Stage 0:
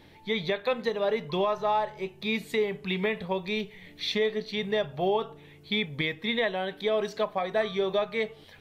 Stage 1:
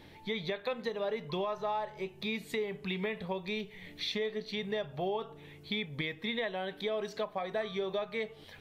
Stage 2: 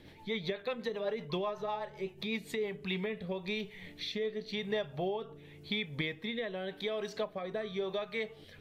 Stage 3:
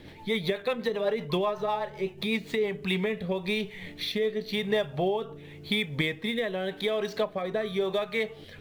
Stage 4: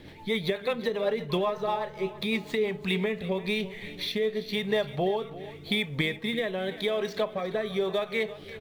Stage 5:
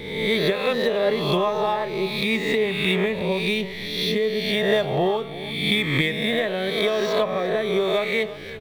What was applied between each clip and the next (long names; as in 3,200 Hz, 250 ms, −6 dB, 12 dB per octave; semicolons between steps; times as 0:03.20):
downward compressor 2 to 1, threshold −37 dBFS, peak gain reduction 8.5 dB
rotating-speaker cabinet horn 8 Hz, later 0.9 Hz, at 0:02.24; level +1.5 dB
running median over 5 samples; level +7.5 dB
repeating echo 340 ms, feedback 48%, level −16 dB
peak hold with a rise ahead of every peak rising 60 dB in 1.05 s; level +4 dB